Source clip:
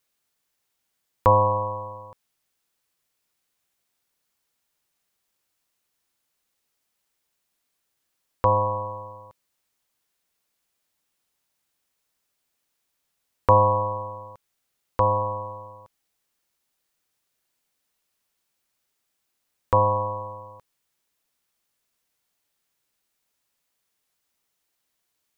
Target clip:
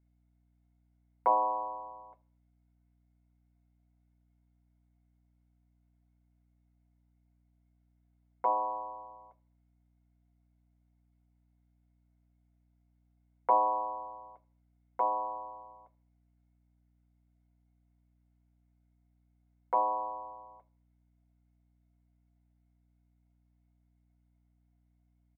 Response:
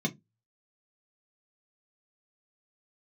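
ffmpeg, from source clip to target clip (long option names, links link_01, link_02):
-filter_complex "[0:a]highpass=frequency=440:width=0.5412,highpass=frequency=440:width=1.3066,equalizer=frequency=460:width_type=q:width=4:gain=-6,equalizer=frequency=680:width_type=q:width=4:gain=9,equalizer=frequency=1100:width_type=q:width=4:gain=-7,equalizer=frequency=1700:width_type=q:width=4:gain=-7,lowpass=frequency=2000:width=0.5412,lowpass=frequency=2000:width=1.3066,asplit=2[link_01][link_02];[link_02]adelay=80,lowpass=frequency=1500:poles=1,volume=-22dB,asplit=2[link_03][link_04];[link_04]adelay=80,lowpass=frequency=1500:poles=1,volume=0.42,asplit=2[link_05][link_06];[link_06]adelay=80,lowpass=frequency=1500:poles=1,volume=0.42[link_07];[link_01][link_03][link_05][link_07]amix=inputs=4:normalize=0,asplit=2[link_08][link_09];[1:a]atrim=start_sample=2205,highshelf=frequency=2200:gain=10[link_10];[link_09][link_10]afir=irnorm=-1:irlink=0,volume=-9.5dB[link_11];[link_08][link_11]amix=inputs=2:normalize=0,aeval=exprs='val(0)+0.000631*(sin(2*PI*60*n/s)+sin(2*PI*2*60*n/s)/2+sin(2*PI*3*60*n/s)/3+sin(2*PI*4*60*n/s)/4+sin(2*PI*5*60*n/s)/5)':channel_layout=same,volume=-5dB"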